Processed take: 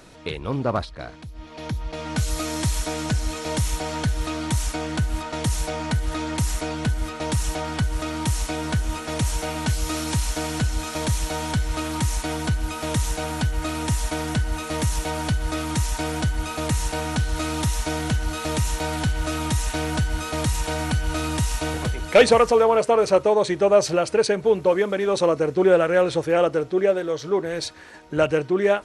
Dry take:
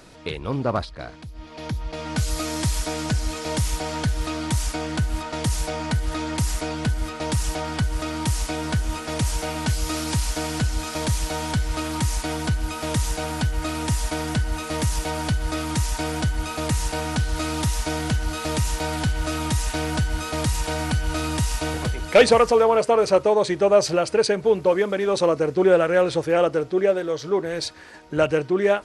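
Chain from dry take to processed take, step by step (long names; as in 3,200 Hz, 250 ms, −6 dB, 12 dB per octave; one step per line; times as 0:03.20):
notch filter 4,800 Hz, Q 14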